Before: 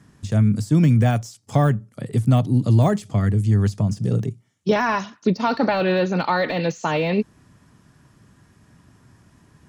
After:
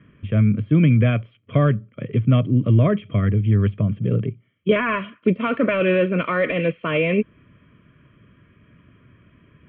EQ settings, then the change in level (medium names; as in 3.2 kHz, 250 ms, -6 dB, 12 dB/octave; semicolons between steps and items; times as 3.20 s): Butterworth band-stop 830 Hz, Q 1.4; rippled Chebyshev low-pass 3.3 kHz, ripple 9 dB; +9.0 dB